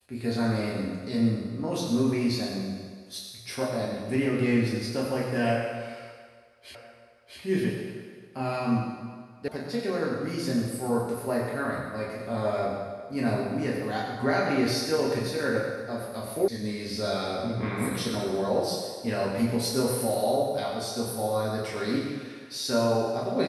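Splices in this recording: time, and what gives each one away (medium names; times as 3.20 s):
6.75 s: repeat of the last 0.65 s
9.48 s: sound stops dead
16.48 s: sound stops dead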